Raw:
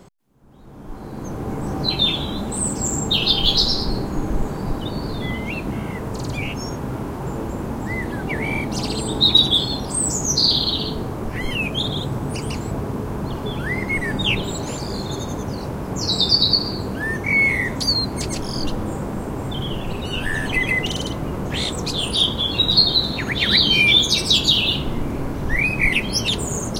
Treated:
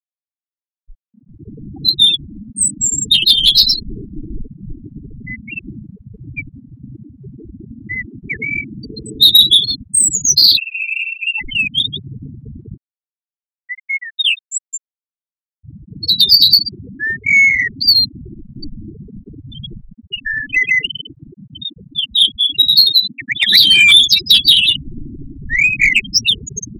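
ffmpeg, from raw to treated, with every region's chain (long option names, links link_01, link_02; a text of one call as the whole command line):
ffmpeg -i in.wav -filter_complex "[0:a]asettb=1/sr,asplit=3[link_01][link_02][link_03];[link_01]atrim=end=10.574[link_04];[link_02]atrim=start=10.57:end=11.4,asetpts=PTS-STARTPTS,afade=type=in:duration=0.004:curve=qsin,afade=type=out:start_time=0.826:duration=0.004:curve=qsin,lowpass=frequency=2400:width_type=q:width=0.5098,lowpass=frequency=2400:width_type=q:width=0.6013,lowpass=frequency=2400:width_type=q:width=0.9,lowpass=frequency=2400:width_type=q:width=2.563,afreqshift=-2800,aeval=exprs='sgn(val(0))*max(abs(val(0))-0.00891,0)':channel_layout=same,equalizer=frequency=2100:width_type=o:width=0.49:gain=2.5[link_05];[link_03]atrim=start=11.396[link_06];[link_04][link_05]acrossfade=duration=0.004:curve1=hsin:curve2=qsin[link_07];[link_07][link_06]acrossfade=duration=0.004:curve1=qsin:curve2=hsin,asettb=1/sr,asplit=3[link_08][link_09][link_10];[link_08]atrim=end=12.774[link_11];[link_09]atrim=start=12.77:end=15.63,asetpts=PTS-STARTPTS,afade=type=in:duration=0.004:curve=qsin,afade=type=out:start_time=2.856:duration=0.004:curve=qsin,aderivative,acontrast=56[link_12];[link_10]atrim=start=15.626[link_13];[link_11][link_12]acrossfade=duration=0.004:curve1=hsin:curve2=qsin[link_14];[link_14][link_13]acrossfade=duration=0.004:curve1=qsin:curve2=hsin,asettb=1/sr,asplit=3[link_15][link_16][link_17];[link_15]atrim=end=19.854[link_18];[link_16]atrim=start=19.85:end=23.55,asetpts=PTS-STARTPTS,afade=type=in:duration=0.004:curve=qsin,afade=type=out:start_time=3.696:duration=0.004:curve=qsin,lowpass=4400,lowshelf=frequency=140:gain=-5.5,aeval=exprs='val(0)+0.00501*(sin(2*PI*60*n/s)+sin(2*PI*2*60*n/s)/2+sin(2*PI*3*60*n/s)/3+sin(2*PI*4*60*n/s)/4+sin(2*PI*5*60*n/s)/5)':channel_layout=same[link_19];[link_17]atrim=start=23.546[link_20];[link_18][link_19]acrossfade=duration=0.004:curve1=hsin:curve2=qsin[link_21];[link_21][link_20]acrossfade=duration=0.004:curve1=qsin:curve2=hsin,afftfilt=real='re*gte(hypot(re,im),0.282)':imag='im*gte(hypot(re,im),0.282)':win_size=1024:overlap=0.75,tiltshelf=frequency=1200:gain=-8.5,acontrast=45,volume=-1dB" out.wav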